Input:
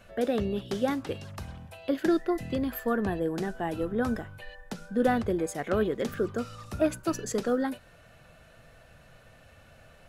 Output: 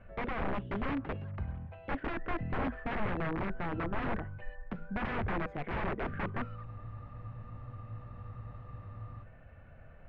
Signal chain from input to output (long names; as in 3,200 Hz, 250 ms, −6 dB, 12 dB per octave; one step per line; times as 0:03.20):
wrap-around overflow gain 25.5 dB
low-pass filter 2,200 Hz 24 dB per octave
low-shelf EQ 150 Hz +10 dB
frozen spectrum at 0:06.68, 2.55 s
level −4 dB